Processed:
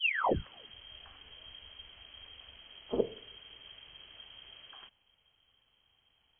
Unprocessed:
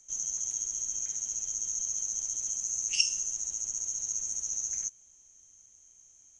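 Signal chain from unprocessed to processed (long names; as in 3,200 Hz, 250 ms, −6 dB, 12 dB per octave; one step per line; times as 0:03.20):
turntable start at the beginning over 0.73 s
voice inversion scrambler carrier 3,200 Hz
level +5 dB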